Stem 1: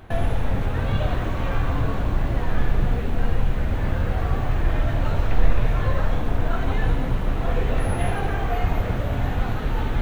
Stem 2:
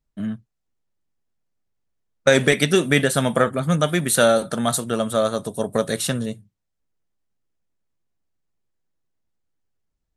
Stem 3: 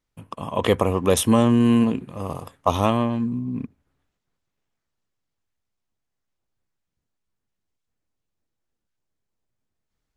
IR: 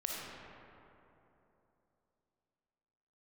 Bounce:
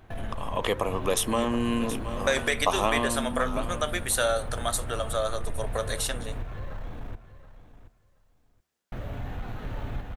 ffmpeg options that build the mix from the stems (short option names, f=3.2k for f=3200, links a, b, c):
-filter_complex "[0:a]asoftclip=type=tanh:threshold=-13.5dB,volume=-8dB,asplit=3[a][b][c];[a]atrim=end=6.43,asetpts=PTS-STARTPTS,afade=t=out:st=6.426:d=0.004:c=hsin[d];[b]atrim=start=6.43:end=8.92,asetpts=PTS-STARTPTS,volume=0[e];[c]atrim=start=8.92,asetpts=PTS-STARTPTS,afade=t=in:d=0.004:c=hsin[f];[d][e][f]concat=n=3:v=0:a=1,asplit=2[g][h];[h]volume=-3.5dB[i];[1:a]highpass=550,volume=0.5dB[j];[2:a]highpass=f=570:p=1,dynaudnorm=f=240:g=17:m=7dB,volume=3dB,asplit=2[k][l];[l]volume=-14dB[m];[i][m]amix=inputs=2:normalize=0,aecho=0:1:725|1450|2175:1|0.17|0.0289[n];[g][j][k][n]amix=inputs=4:normalize=0,bandreject=f=74.6:t=h:w=4,bandreject=f=149.2:t=h:w=4,bandreject=f=223.8:t=h:w=4,bandreject=f=298.4:t=h:w=4,bandreject=f=373:t=h:w=4,bandreject=f=447.6:t=h:w=4,bandreject=f=522.2:t=h:w=4,bandreject=f=596.8:t=h:w=4,bandreject=f=671.4:t=h:w=4,bandreject=f=746:t=h:w=4,bandreject=f=820.6:t=h:w=4,bandreject=f=895.2:t=h:w=4,bandreject=f=969.8:t=h:w=4,bandreject=f=1.0444k:t=h:w=4,bandreject=f=1.119k:t=h:w=4,bandreject=f=1.1936k:t=h:w=4,bandreject=f=1.2682k:t=h:w=4,bandreject=f=1.3428k:t=h:w=4,bandreject=f=1.4174k:t=h:w=4,bandreject=f=1.492k:t=h:w=4,acompressor=threshold=-34dB:ratio=1.5"